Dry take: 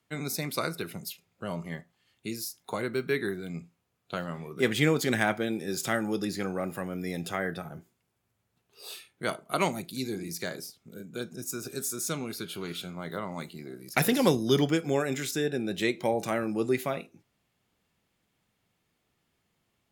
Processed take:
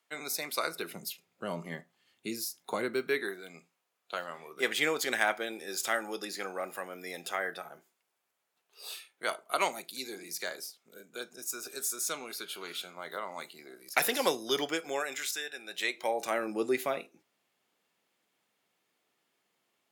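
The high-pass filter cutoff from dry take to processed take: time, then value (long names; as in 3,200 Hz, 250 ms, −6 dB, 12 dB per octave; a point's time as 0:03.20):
0:00.63 540 Hz
0:01.05 220 Hz
0:02.80 220 Hz
0:03.37 570 Hz
0:14.80 570 Hz
0:15.51 1,300 Hz
0:16.55 340 Hz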